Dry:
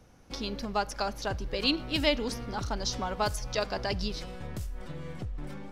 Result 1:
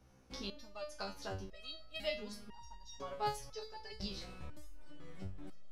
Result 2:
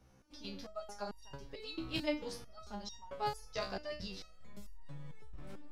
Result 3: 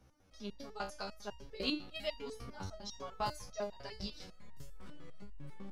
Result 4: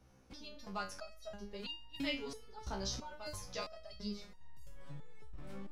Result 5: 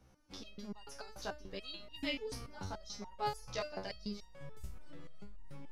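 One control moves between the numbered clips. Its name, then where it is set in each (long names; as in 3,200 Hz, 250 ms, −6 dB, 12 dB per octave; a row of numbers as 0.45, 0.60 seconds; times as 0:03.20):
step-sequenced resonator, speed: 2, 4.5, 10, 3, 6.9 Hertz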